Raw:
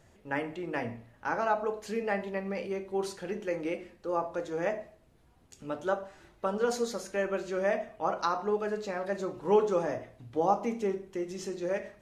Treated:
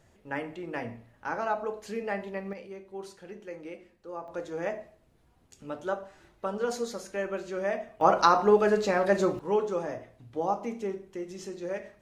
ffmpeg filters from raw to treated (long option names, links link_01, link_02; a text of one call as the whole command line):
ffmpeg -i in.wav -af "asetnsamples=nb_out_samples=441:pad=0,asendcmd='2.53 volume volume -8.5dB;4.28 volume volume -1.5dB;8.01 volume volume 9dB;9.39 volume volume -2.5dB',volume=-1.5dB" out.wav